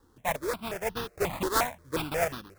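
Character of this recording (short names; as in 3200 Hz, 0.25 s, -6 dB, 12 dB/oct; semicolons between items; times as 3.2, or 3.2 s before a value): a buzz of ramps at a fixed pitch in blocks of 8 samples; random-step tremolo; aliases and images of a low sample rate 3000 Hz, jitter 20%; notches that jump at a steady rate 5.6 Hz 640–2200 Hz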